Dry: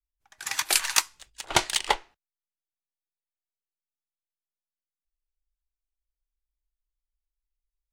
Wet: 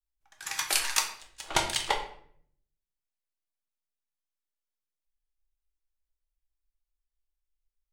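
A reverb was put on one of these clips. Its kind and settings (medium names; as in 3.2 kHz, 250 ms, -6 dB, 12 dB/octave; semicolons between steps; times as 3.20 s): simulated room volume 100 m³, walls mixed, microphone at 0.6 m; trim -5 dB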